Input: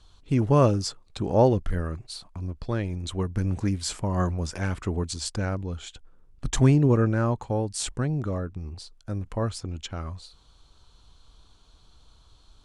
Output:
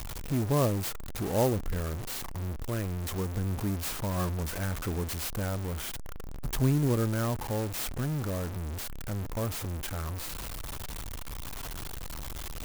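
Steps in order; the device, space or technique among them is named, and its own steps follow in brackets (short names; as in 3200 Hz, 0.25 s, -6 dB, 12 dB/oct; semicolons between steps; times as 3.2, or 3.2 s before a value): early CD player with a faulty converter (zero-crossing step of -23 dBFS; clock jitter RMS 0.065 ms); gain -8.5 dB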